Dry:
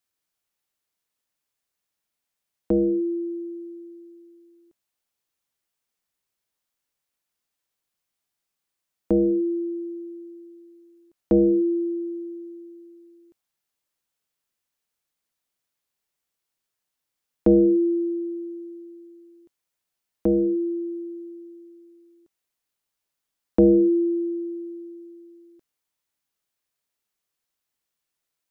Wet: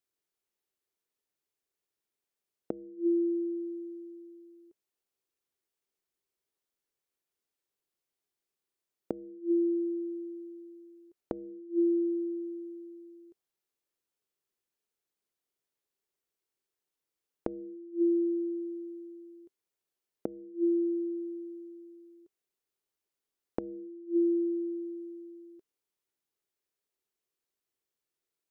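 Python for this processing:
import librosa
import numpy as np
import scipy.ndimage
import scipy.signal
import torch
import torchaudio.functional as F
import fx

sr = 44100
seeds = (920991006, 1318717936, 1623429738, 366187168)

y = fx.peak_eq(x, sr, hz=390.0, db=11.5, octaves=0.63)
y = fx.gate_flip(y, sr, shuts_db=-10.0, range_db=-26)
y = y * 10.0 ** (-7.5 / 20.0)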